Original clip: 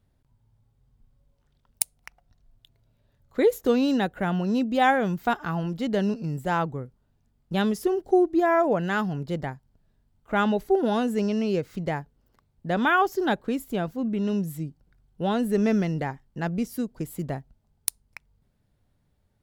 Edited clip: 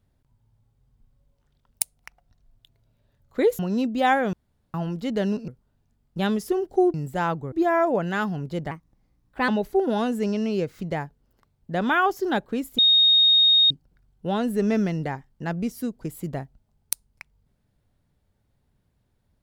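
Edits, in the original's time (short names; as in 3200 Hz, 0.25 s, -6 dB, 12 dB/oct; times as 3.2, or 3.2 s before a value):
3.59–4.36 cut
5.1–5.51 room tone
6.25–6.83 move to 8.29
9.48–10.44 speed 124%
13.74–14.66 bleep 3720 Hz -13.5 dBFS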